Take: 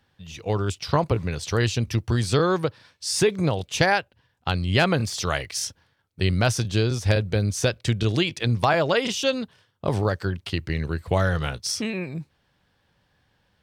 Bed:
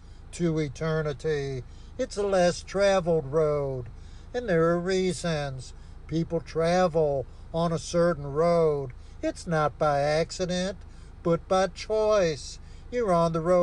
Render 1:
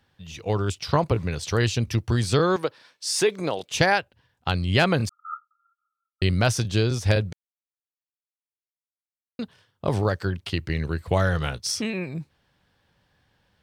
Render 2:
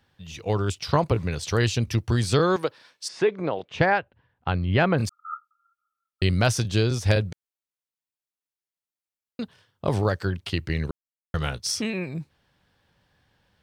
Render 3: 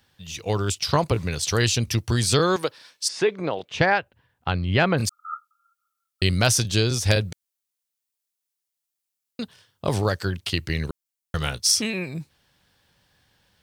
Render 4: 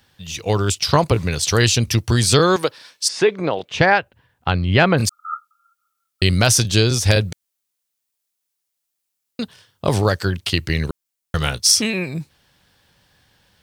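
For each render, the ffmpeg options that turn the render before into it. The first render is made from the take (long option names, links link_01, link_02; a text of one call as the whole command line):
ffmpeg -i in.wav -filter_complex "[0:a]asettb=1/sr,asplit=3[link_01][link_02][link_03];[link_01]atrim=end=2.564[link_04];[link_02]atrim=start=2.56:end=3.71,asetpts=PTS-STARTPTS,afade=type=in:duration=0.004:curve=qsin,afade=type=out:start_time=1.146:duration=0.004:curve=qsin,highpass=290[link_05];[link_03]atrim=start=3.706[link_06];[link_04][link_05]acrossfade=duration=0.004:curve1=hsin:curve2=qsin[link_07];[link_07][link_06]acrossfade=duration=0.004:curve1=qsin:curve2=hsin,asettb=1/sr,asplit=3[link_08][link_09][link_10];[link_08]atrim=end=5.094[link_11];[link_09]atrim=start=5.09:end=6.22,asetpts=PTS-STARTPTS,afade=type=in:duration=0.004:curve=qsin,afade=type=out:start_time=1.126:duration=0.004:curve=qsin,asuperpass=centerf=1300:order=20:qfactor=6.8[link_12];[link_10]atrim=start=6.216[link_13];[link_11][link_12]acrossfade=duration=0.004:curve1=hsin:curve2=qsin[link_14];[link_14][link_13]acrossfade=duration=0.004:curve1=qsin:curve2=hsin,asplit=3[link_15][link_16][link_17];[link_15]atrim=end=7.33,asetpts=PTS-STARTPTS,afade=type=out:start_time=7.326:duration=0.004:curve=hsin[link_18];[link_16]atrim=start=7.33:end=9.39,asetpts=PTS-STARTPTS,volume=0[link_19];[link_17]atrim=start=9.39,asetpts=PTS-STARTPTS,afade=type=in:duration=0.004:curve=hsin[link_20];[link_18][link_19][link_20]concat=n=3:v=0:a=1" out.wav
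ffmpeg -i in.wav -filter_complex "[0:a]asplit=3[link_01][link_02][link_03];[link_01]afade=type=out:start_time=3.07:duration=0.02[link_04];[link_02]lowpass=2100,afade=type=in:start_time=3.07:duration=0.02,afade=type=out:start_time=4.97:duration=0.02[link_05];[link_03]afade=type=in:start_time=4.97:duration=0.02[link_06];[link_04][link_05][link_06]amix=inputs=3:normalize=0,asplit=3[link_07][link_08][link_09];[link_07]atrim=end=10.91,asetpts=PTS-STARTPTS,afade=type=out:start_time=10.906:duration=0.004:curve=hsin[link_10];[link_08]atrim=start=10.91:end=11.34,asetpts=PTS-STARTPTS,volume=0[link_11];[link_09]atrim=start=11.34,asetpts=PTS-STARTPTS,afade=type=in:duration=0.004:curve=hsin[link_12];[link_10][link_11][link_12]concat=n=3:v=0:a=1" out.wav
ffmpeg -i in.wav -af "highshelf=frequency=3500:gain=11.5" out.wav
ffmpeg -i in.wav -af "volume=5.5dB,alimiter=limit=-1dB:level=0:latency=1" out.wav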